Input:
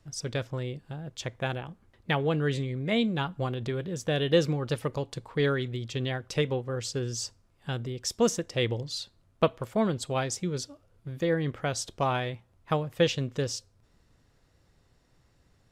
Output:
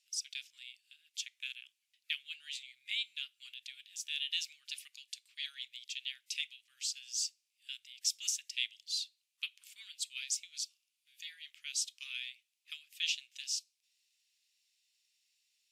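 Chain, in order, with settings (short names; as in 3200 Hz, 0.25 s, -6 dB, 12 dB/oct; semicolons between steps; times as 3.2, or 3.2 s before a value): elliptic high-pass 2500 Hz, stop band 70 dB; WMA 128 kbps 48000 Hz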